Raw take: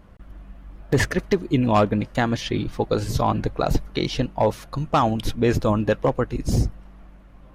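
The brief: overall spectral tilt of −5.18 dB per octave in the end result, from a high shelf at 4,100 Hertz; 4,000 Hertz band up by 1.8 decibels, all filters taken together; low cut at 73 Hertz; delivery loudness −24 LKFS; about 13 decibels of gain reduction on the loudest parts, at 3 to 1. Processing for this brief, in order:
high-pass filter 73 Hz
parametric band 4,000 Hz +4 dB
high-shelf EQ 4,100 Hz −3 dB
downward compressor 3 to 1, threshold −33 dBFS
level +10.5 dB

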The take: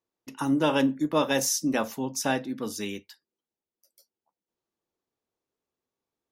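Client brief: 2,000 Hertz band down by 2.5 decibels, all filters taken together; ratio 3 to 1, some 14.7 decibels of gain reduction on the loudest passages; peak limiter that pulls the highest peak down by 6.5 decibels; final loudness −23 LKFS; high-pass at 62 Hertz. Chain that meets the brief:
high-pass filter 62 Hz
parametric band 2,000 Hz −3.5 dB
downward compressor 3 to 1, threshold −40 dBFS
level +19 dB
brickwall limiter −13 dBFS

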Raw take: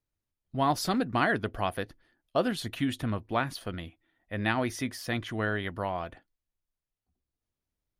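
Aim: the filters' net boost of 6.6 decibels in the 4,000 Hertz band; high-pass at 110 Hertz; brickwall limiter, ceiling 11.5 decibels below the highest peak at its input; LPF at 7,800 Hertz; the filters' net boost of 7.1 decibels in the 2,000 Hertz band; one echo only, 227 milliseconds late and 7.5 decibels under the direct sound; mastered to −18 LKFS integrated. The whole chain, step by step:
high-pass filter 110 Hz
low-pass filter 7,800 Hz
parametric band 2,000 Hz +8 dB
parametric band 4,000 Hz +6 dB
brickwall limiter −16.5 dBFS
single-tap delay 227 ms −7.5 dB
level +12 dB

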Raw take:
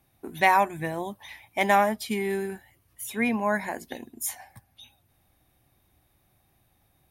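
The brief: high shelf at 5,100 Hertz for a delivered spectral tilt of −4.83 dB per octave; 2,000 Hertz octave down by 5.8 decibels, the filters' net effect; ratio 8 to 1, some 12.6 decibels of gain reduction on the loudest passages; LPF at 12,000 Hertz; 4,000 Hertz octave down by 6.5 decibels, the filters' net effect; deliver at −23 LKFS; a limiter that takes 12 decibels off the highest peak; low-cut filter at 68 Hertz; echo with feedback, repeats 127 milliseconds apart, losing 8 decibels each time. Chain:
high-pass filter 68 Hz
low-pass filter 12,000 Hz
parametric band 2,000 Hz −5 dB
parametric band 4,000 Hz −3.5 dB
high-shelf EQ 5,100 Hz −7.5 dB
downward compressor 8 to 1, threshold −30 dBFS
brickwall limiter −30.5 dBFS
repeating echo 127 ms, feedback 40%, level −8 dB
level +17.5 dB

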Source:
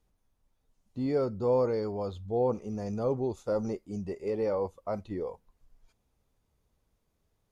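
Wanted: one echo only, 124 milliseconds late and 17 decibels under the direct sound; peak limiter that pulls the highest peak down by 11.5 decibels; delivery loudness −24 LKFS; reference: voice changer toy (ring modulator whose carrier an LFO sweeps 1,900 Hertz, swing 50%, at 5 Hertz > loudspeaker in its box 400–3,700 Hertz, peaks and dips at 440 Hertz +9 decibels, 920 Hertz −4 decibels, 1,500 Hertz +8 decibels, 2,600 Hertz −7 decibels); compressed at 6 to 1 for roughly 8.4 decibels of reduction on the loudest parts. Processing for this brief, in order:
downward compressor 6 to 1, threshold −31 dBFS
brickwall limiter −35 dBFS
single-tap delay 124 ms −17 dB
ring modulator whose carrier an LFO sweeps 1,900 Hz, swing 50%, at 5 Hz
loudspeaker in its box 400–3,700 Hz, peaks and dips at 440 Hz +9 dB, 920 Hz −4 dB, 1,500 Hz +8 dB, 2,600 Hz −7 dB
level +18.5 dB

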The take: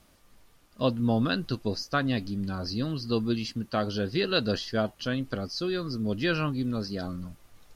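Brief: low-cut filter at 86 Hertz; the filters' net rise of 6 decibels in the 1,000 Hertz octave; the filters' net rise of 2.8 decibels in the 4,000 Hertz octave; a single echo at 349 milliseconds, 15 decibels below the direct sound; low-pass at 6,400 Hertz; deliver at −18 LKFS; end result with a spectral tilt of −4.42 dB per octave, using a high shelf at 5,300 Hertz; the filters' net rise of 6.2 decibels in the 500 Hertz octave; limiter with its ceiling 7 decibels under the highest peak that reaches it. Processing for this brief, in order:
high-pass filter 86 Hz
low-pass filter 6,400 Hz
parametric band 500 Hz +6 dB
parametric band 1,000 Hz +6.5 dB
parametric band 4,000 Hz +5.5 dB
high-shelf EQ 5,300 Hz −5 dB
brickwall limiter −14 dBFS
single-tap delay 349 ms −15 dB
level +9.5 dB

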